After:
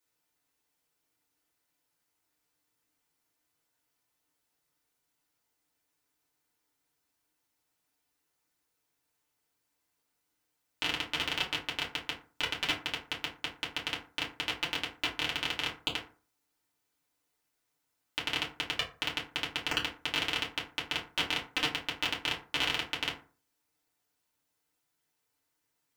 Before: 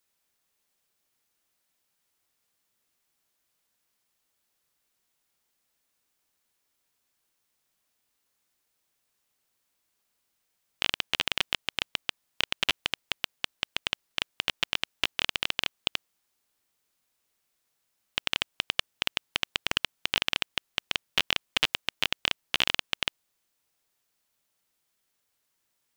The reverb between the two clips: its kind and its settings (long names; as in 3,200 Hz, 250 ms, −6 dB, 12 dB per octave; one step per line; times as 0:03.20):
feedback delay network reverb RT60 0.39 s, low-frequency decay 1.1×, high-frequency decay 0.5×, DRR −5.5 dB
level −8 dB